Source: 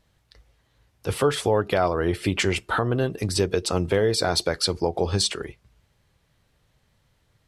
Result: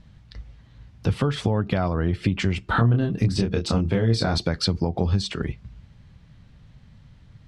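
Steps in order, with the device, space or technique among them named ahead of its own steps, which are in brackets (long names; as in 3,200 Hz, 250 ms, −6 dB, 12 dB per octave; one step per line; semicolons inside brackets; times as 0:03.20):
jukebox (low-pass filter 5,200 Hz 12 dB per octave; low shelf with overshoot 290 Hz +9.5 dB, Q 1.5; downward compressor 4 to 1, threshold −28 dBFS, peak gain reduction 15.5 dB)
0:02.72–0:04.38: double-tracking delay 26 ms −4 dB
level +7 dB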